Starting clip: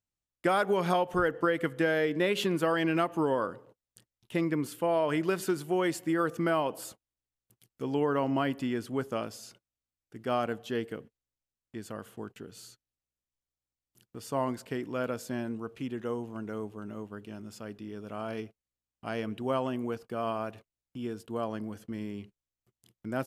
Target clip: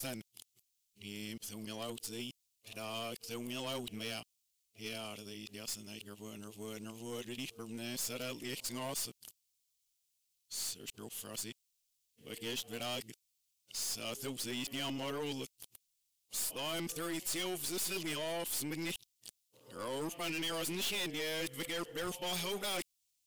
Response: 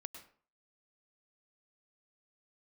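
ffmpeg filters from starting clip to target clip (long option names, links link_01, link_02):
-af "areverse,aexciter=amount=6.3:drive=8.4:freq=2300,aeval=exprs='(tanh(22.4*val(0)+0.3)-tanh(0.3))/22.4':channel_layout=same,volume=-7.5dB"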